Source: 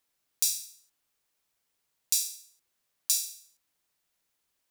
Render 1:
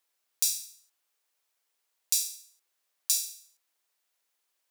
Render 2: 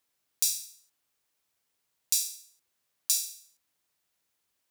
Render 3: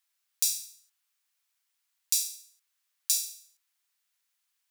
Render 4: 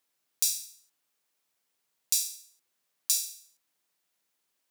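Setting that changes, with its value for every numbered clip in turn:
high-pass, cutoff frequency: 420 Hz, 43 Hz, 1.2 kHz, 150 Hz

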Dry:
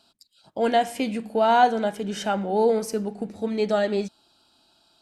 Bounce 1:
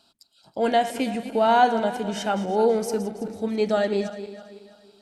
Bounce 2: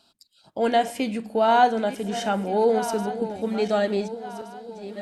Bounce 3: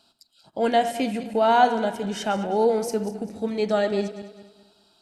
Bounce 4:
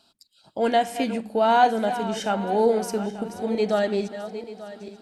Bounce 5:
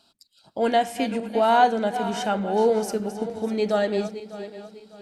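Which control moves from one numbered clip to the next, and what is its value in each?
backward echo that repeats, time: 164 ms, 736 ms, 103 ms, 444 ms, 300 ms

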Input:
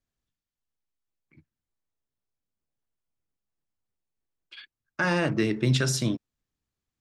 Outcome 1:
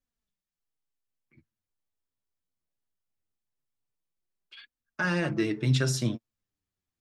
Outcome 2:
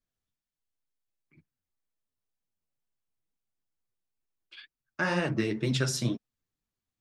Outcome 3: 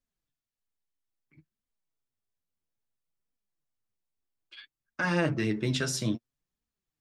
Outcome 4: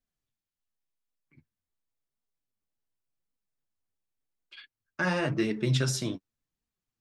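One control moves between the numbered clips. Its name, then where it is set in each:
flange, rate: 0.21 Hz, 2.1 Hz, 0.6 Hz, 0.9 Hz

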